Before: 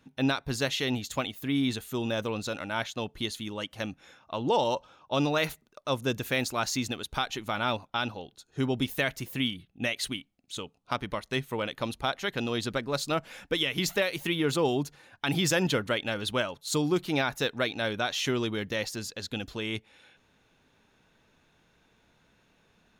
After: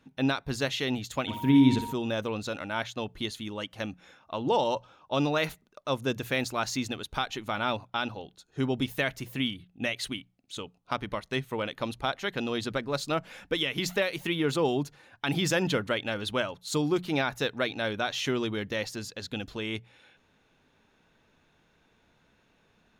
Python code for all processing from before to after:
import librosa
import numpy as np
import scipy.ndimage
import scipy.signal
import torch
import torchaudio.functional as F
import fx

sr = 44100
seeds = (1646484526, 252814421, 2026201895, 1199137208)

y = fx.low_shelf(x, sr, hz=390.0, db=10.0, at=(1.27, 1.92), fade=0.02)
y = fx.dmg_tone(y, sr, hz=940.0, level_db=-40.0, at=(1.27, 1.92), fade=0.02)
y = fx.room_flutter(y, sr, wall_m=10.4, rt60_s=0.44, at=(1.27, 1.92), fade=0.02)
y = fx.high_shelf(y, sr, hz=5600.0, db=-5.5)
y = fx.hum_notches(y, sr, base_hz=60, count=3)